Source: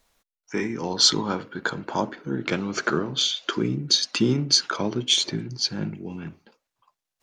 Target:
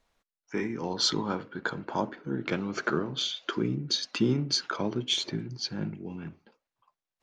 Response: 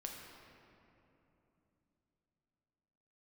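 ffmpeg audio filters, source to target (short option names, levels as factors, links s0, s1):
-af "aemphasis=mode=reproduction:type=50kf,volume=0.631"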